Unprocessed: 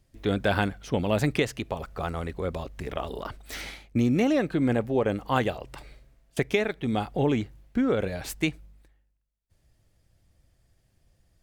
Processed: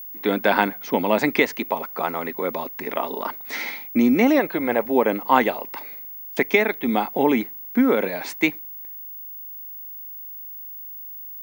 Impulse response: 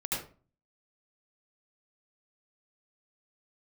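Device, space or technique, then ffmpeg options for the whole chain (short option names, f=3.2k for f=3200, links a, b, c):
old television with a line whistle: -filter_complex "[0:a]asettb=1/sr,asplit=3[a][b][c];[a]atrim=end=4.394[d];[b]atrim=start=4.39:end=4.86,asetpts=PTS-STARTPTS,afade=t=in:d=0.004:c=qsin,afade=t=out:st=0.466:d=0.004:c=qsin,equalizer=f=250:t=o:w=0.67:g=-10,equalizer=f=630:t=o:w=0.67:g=3,equalizer=f=6.3k:t=o:w=0.67:g=-6[e];[c]atrim=start=4.856[f];[d][e]acrossfade=d=0.004:c1=hsin:c2=qsin[g];[g][f]acrossfade=d=0.004:c1=qsin:c2=hsin,highpass=f=220:w=0.5412,highpass=f=220:w=1.3066,equalizer=f=240:t=q:w=4:g=4,equalizer=f=940:t=q:w=4:g=9,equalizer=f=2.1k:t=q:w=4:g=8,equalizer=f=3k:t=q:w=4:g=-4,equalizer=f=7.8k:t=q:w=4:g=-8,lowpass=f=8.6k:w=0.5412,lowpass=f=8.6k:w=1.3066,aeval=exprs='val(0)+0.0112*sin(2*PI*15625*n/s)':c=same,volume=5dB"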